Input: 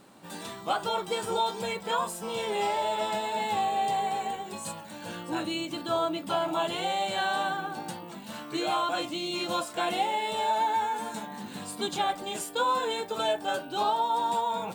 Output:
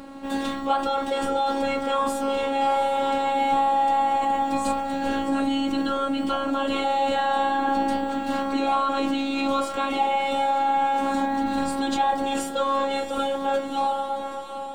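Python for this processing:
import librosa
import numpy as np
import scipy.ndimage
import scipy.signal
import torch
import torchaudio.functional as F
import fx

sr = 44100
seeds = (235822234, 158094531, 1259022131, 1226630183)

p1 = fx.fade_out_tail(x, sr, length_s=2.38)
p2 = fx.lowpass(p1, sr, hz=2000.0, slope=6)
p3 = fx.low_shelf(p2, sr, hz=190.0, db=9.0)
p4 = fx.over_compress(p3, sr, threshold_db=-36.0, ratio=-1.0)
p5 = p3 + (p4 * librosa.db_to_amplitude(1.0))
p6 = fx.robotise(p5, sr, hz=274.0)
p7 = p6 + fx.echo_diffused(p6, sr, ms=750, feedback_pct=66, wet_db=-11.5, dry=0)
y = p7 * librosa.db_to_amplitude(5.5)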